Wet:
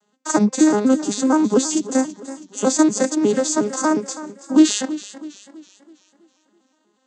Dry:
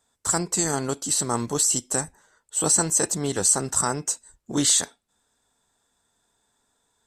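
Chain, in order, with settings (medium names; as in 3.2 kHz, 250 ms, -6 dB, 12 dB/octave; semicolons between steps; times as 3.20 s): vocoder on a broken chord major triad, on G#3, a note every 120 ms; modulated delay 327 ms, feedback 44%, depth 56 cents, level -15 dB; trim +8 dB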